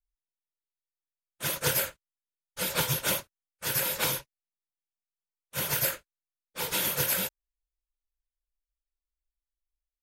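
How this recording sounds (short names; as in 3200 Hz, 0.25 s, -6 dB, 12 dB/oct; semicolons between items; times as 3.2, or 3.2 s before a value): noise floor -94 dBFS; spectral tilt -1.5 dB/oct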